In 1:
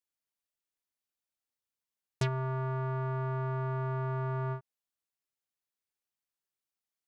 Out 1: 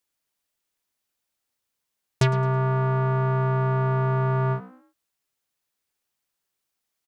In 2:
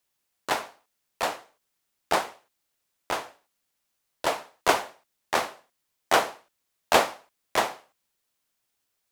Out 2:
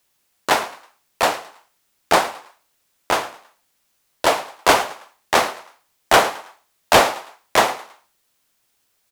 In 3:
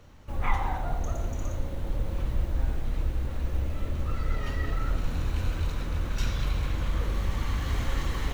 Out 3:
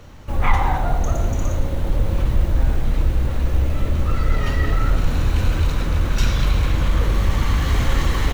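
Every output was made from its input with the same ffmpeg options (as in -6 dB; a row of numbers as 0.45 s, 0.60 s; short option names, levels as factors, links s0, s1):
-filter_complex "[0:a]asplit=4[s0][s1][s2][s3];[s1]adelay=108,afreqshift=61,volume=0.119[s4];[s2]adelay=216,afreqshift=122,volume=0.0417[s5];[s3]adelay=324,afreqshift=183,volume=0.0146[s6];[s0][s4][s5][s6]amix=inputs=4:normalize=0,asplit=2[s7][s8];[s8]aeval=exprs='0.631*sin(PI/2*3.16*val(0)/0.631)':c=same,volume=0.473[s9];[s7][s9]amix=inputs=2:normalize=0"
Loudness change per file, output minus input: +10.5 LU, +8.5 LU, +10.0 LU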